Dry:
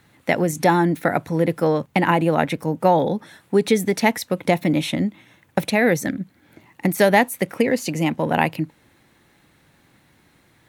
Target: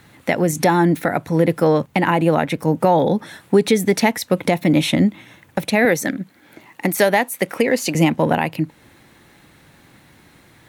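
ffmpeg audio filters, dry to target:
-filter_complex "[0:a]asettb=1/sr,asplit=3[s0][s1][s2];[s0]atrim=end=5.854[s3];[s1]atrim=start=5.85:end=7.95,asetpts=PTS-STARTPTS,afade=t=in:d=0.004:c=qsin,afade=t=out:st=2.096:d=0.004:c=qsin,highpass=f=320:p=1[s4];[s2]atrim=start=7.946[s5];[s3][s4]acrossfade=d=0.004:c1=hsin:c2=qsin[s6];[s6][s5]acrossfade=d=0.004:c1=qsin:c2=hsin,alimiter=limit=0.266:level=0:latency=1:release=439,volume=2.37"

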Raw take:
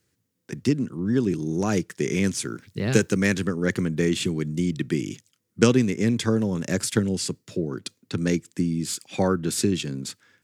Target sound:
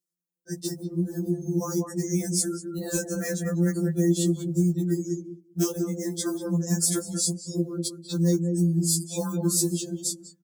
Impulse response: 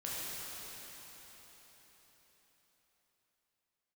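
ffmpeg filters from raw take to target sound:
-filter_complex "[0:a]acrusher=bits=4:mode=log:mix=0:aa=0.000001,highpass=130,equalizer=f=2400:t=o:w=1.3:g=-13.5,acompressor=threshold=0.0126:ratio=2,highshelf=f=4800:g=11,asplit=2[s0][s1];[s1]adelay=195,lowpass=f=2400:p=1,volume=0.562,asplit=2[s2][s3];[s3]adelay=195,lowpass=f=2400:p=1,volume=0.19,asplit=2[s4][s5];[s5]adelay=195,lowpass=f=2400:p=1,volume=0.19[s6];[s0][s2][s4][s6]amix=inputs=4:normalize=0,afftdn=nr=26:nf=-46,afftfilt=real='re*2.83*eq(mod(b,8),0)':imag='im*2.83*eq(mod(b,8),0)':win_size=2048:overlap=0.75,volume=2.51"

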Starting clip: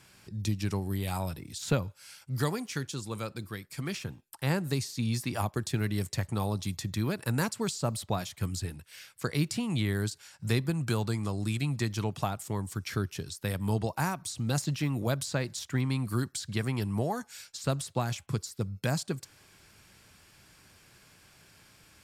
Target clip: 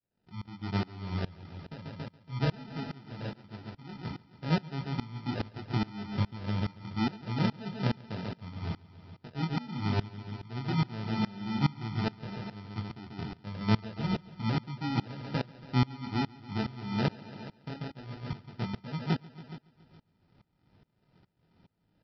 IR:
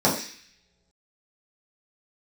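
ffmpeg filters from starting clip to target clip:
-filter_complex "[0:a]agate=range=0.0224:threshold=0.00158:ratio=3:detection=peak,equalizer=f=200:w=1.1:g=6.5,acrossover=split=700|1600[s0][s1][s2];[s0]dynaudnorm=f=110:g=7:m=3.98[s3];[s3][s1][s2]amix=inputs=3:normalize=0,flanger=delay=18:depth=7.4:speed=1.1,aresample=11025,acrusher=samples=10:mix=1:aa=0.000001,aresample=44100,aecho=1:1:140|280|420|560|700|840|980|1120:0.422|0.249|0.147|0.0866|0.0511|0.0301|0.0178|0.0105,aeval=exprs='val(0)*pow(10,-23*if(lt(mod(-2.4*n/s,1),2*abs(-2.4)/1000),1-mod(-2.4*n/s,1)/(2*abs(-2.4)/1000),(mod(-2.4*n/s,1)-2*abs(-2.4)/1000)/(1-2*abs(-2.4)/1000))/20)':c=same,volume=0.422"

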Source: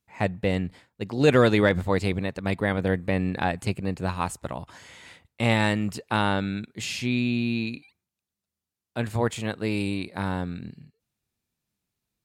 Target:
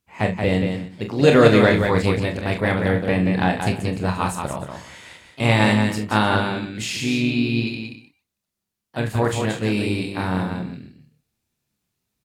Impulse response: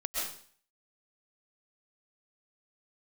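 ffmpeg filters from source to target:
-filter_complex "[0:a]asplit=2[s0][s1];[s1]asetrate=52444,aresample=44100,atempo=0.840896,volume=0.251[s2];[s0][s2]amix=inputs=2:normalize=0,asplit=2[s3][s4];[s4]adelay=28,volume=0.422[s5];[s3][s5]amix=inputs=2:normalize=0,aecho=1:1:43|179|305:0.376|0.531|0.126,volume=1.41"

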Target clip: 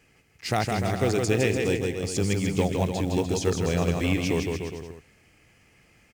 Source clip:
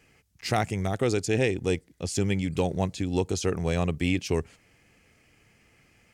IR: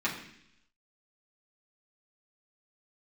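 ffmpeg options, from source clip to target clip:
-af "acrusher=bits=7:mode=log:mix=0:aa=0.000001,aecho=1:1:160|296|411.6|509.9|593.4:0.631|0.398|0.251|0.158|0.1"

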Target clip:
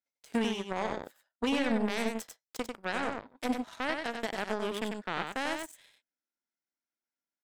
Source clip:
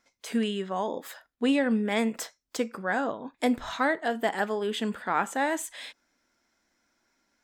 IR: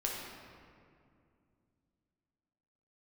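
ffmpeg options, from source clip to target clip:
-af "highpass=f=150:w=0.5412,highpass=f=150:w=1.3066,bandreject=f=1100:w=12,alimiter=limit=0.0944:level=0:latency=1:release=61,aeval=exprs='0.0944*(cos(1*acos(clip(val(0)/0.0944,-1,1)))-cos(1*PI/2))+0.0266*(cos(3*acos(clip(val(0)/0.0944,-1,1)))-cos(3*PI/2))+0.0015*(cos(7*acos(clip(val(0)/0.0944,-1,1)))-cos(7*PI/2))':c=same,aecho=1:1:95:0.562"

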